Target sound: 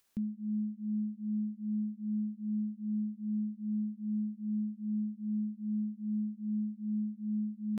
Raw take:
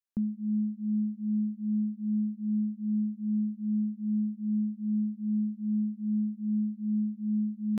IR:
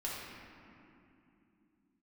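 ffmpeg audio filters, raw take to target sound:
-af "acompressor=mode=upward:threshold=0.00316:ratio=2.5,volume=0.562"

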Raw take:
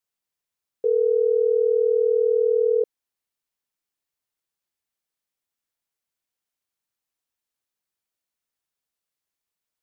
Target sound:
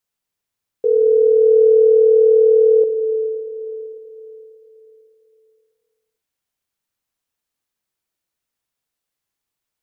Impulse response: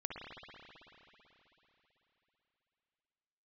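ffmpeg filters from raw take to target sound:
-filter_complex "[0:a]asplit=2[s0][s1];[1:a]atrim=start_sample=2205,lowshelf=f=330:g=6.5[s2];[s1][s2]afir=irnorm=-1:irlink=0,volume=0.841[s3];[s0][s3]amix=inputs=2:normalize=0"

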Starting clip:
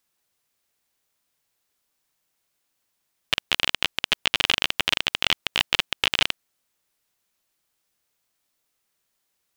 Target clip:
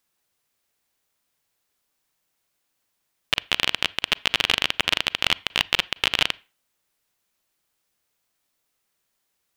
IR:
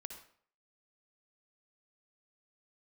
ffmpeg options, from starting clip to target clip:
-filter_complex "[0:a]asplit=2[s0][s1];[1:a]atrim=start_sample=2205,asetrate=70560,aresample=44100,lowpass=4100[s2];[s1][s2]afir=irnorm=-1:irlink=0,volume=0.447[s3];[s0][s3]amix=inputs=2:normalize=0"

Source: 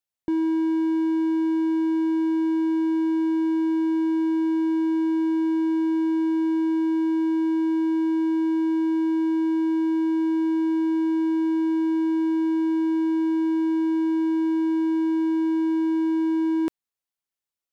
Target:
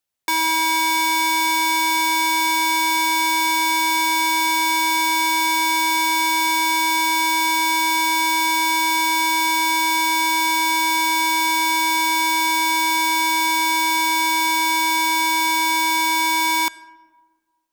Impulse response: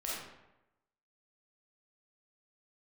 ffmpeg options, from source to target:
-filter_complex "[0:a]aeval=exprs='(mod(13.3*val(0)+1,2)-1)/13.3':c=same,asplit=2[s0][s1];[1:a]atrim=start_sample=2205,asetrate=25137,aresample=44100[s2];[s1][s2]afir=irnorm=-1:irlink=0,volume=0.0562[s3];[s0][s3]amix=inputs=2:normalize=0,volume=2.24"

